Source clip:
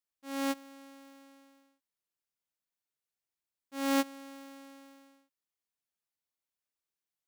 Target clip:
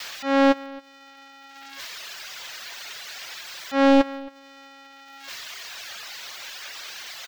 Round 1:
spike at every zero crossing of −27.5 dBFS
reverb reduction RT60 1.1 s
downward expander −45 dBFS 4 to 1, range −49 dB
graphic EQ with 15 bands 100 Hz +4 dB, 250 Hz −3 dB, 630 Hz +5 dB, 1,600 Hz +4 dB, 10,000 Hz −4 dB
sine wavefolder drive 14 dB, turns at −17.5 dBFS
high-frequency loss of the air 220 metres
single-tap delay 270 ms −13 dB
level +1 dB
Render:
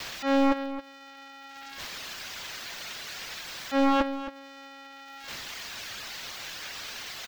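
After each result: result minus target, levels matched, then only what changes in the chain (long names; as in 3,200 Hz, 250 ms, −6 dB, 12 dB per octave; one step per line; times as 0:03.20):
echo-to-direct +9.5 dB; sine wavefolder: distortion +7 dB
change: single-tap delay 270 ms −22.5 dB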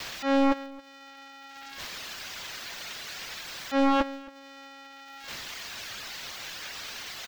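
sine wavefolder: distortion +7 dB
change: sine wavefolder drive 14 dB, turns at −10.5 dBFS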